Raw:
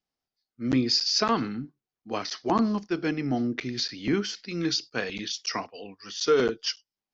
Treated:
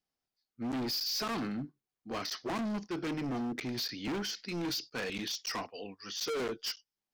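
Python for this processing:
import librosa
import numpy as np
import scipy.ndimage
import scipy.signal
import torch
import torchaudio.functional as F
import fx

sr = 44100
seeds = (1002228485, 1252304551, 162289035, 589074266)

y = np.clip(x, -10.0 ** (-30.5 / 20.0), 10.0 ** (-30.5 / 20.0))
y = y * librosa.db_to_amplitude(-2.0)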